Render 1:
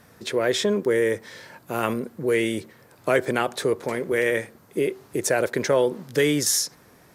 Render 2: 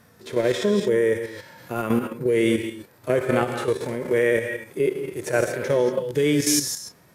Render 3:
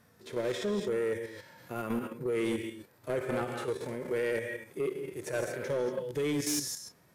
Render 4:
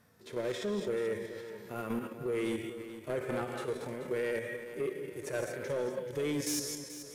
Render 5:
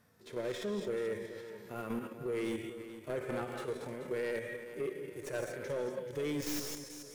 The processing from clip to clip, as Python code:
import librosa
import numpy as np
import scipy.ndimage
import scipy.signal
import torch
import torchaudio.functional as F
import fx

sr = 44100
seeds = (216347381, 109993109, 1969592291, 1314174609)

y1 = fx.rev_gated(x, sr, seeds[0], gate_ms=260, shape='rising', drr_db=9.0)
y1 = fx.hpss(y1, sr, part='percussive', gain_db=-17)
y1 = fx.level_steps(y1, sr, step_db=9)
y1 = y1 * 10.0 ** (8.0 / 20.0)
y2 = 10.0 ** (-16.0 / 20.0) * np.tanh(y1 / 10.0 ** (-16.0 / 20.0))
y2 = y2 * 10.0 ** (-8.5 / 20.0)
y3 = fx.echo_feedback(y2, sr, ms=432, feedback_pct=42, wet_db=-12)
y3 = y3 * 10.0 ** (-2.5 / 20.0)
y4 = fx.tracing_dist(y3, sr, depth_ms=0.077)
y4 = y4 * 10.0 ** (-2.5 / 20.0)